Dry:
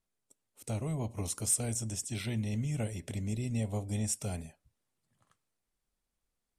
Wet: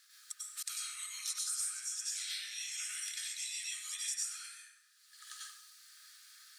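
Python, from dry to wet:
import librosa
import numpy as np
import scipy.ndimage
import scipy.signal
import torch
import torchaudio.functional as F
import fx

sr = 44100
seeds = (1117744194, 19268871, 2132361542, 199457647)

y = scipy.signal.sosfilt(scipy.signal.cheby1(6, 9, 1200.0, 'highpass', fs=sr, output='sos'), x)
y = fx.rev_plate(y, sr, seeds[0], rt60_s=0.66, hf_ratio=0.75, predelay_ms=85, drr_db=-7.0)
y = fx.band_squash(y, sr, depth_pct=100)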